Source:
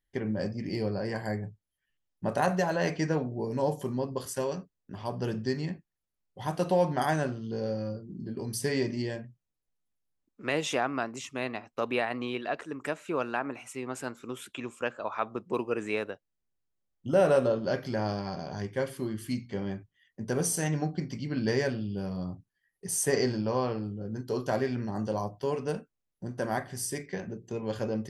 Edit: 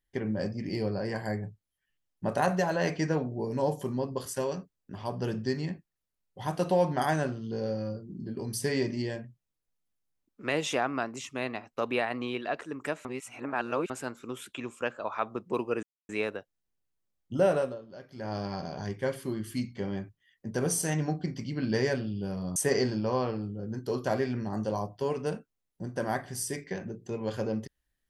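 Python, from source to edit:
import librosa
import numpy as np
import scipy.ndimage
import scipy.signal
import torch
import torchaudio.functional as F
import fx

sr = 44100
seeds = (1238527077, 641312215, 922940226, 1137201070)

y = fx.edit(x, sr, fx.reverse_span(start_s=13.05, length_s=0.85),
    fx.insert_silence(at_s=15.83, length_s=0.26),
    fx.fade_down_up(start_s=17.14, length_s=1.08, db=-17.0, fade_s=0.38),
    fx.cut(start_s=22.3, length_s=0.68), tone=tone)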